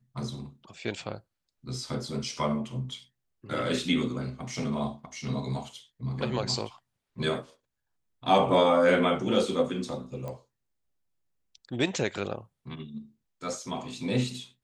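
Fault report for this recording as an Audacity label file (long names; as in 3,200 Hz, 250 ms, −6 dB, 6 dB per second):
10.280000	10.280000	click −25 dBFS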